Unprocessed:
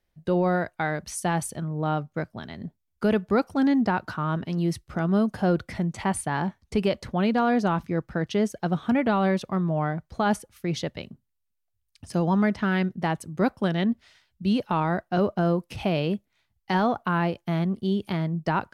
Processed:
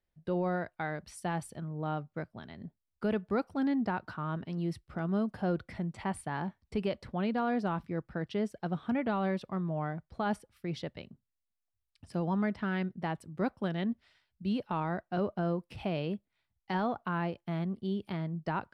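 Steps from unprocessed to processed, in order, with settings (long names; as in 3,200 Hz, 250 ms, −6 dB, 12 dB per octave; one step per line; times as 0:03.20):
high-shelf EQ 7,100 Hz −10 dB
notch filter 6,400 Hz, Q 5.8
level −8.5 dB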